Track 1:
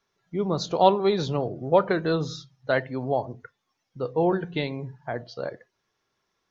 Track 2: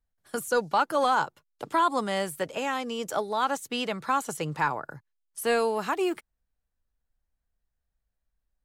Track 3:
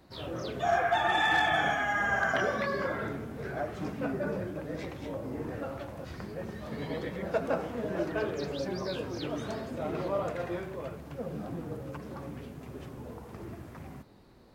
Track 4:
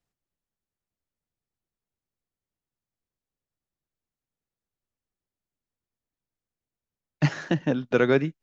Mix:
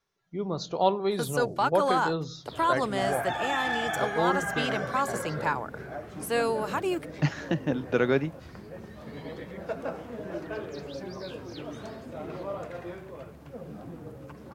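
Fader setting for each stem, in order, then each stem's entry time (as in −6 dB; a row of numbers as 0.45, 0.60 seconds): −5.5, −2.0, −4.0, −3.5 decibels; 0.00, 0.85, 2.35, 0.00 seconds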